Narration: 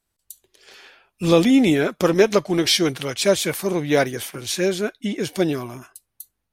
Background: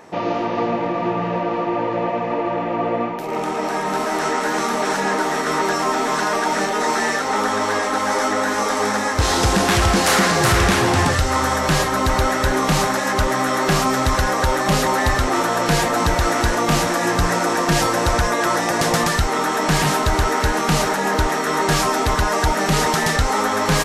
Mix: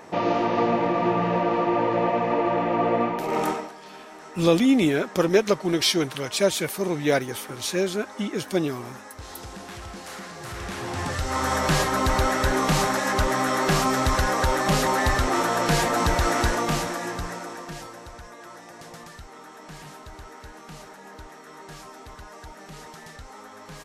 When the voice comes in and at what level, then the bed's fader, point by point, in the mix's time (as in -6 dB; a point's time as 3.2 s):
3.15 s, -3.5 dB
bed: 3.5 s -1 dB
3.76 s -22.5 dB
10.37 s -22.5 dB
11.56 s -4 dB
16.46 s -4 dB
18.11 s -24.5 dB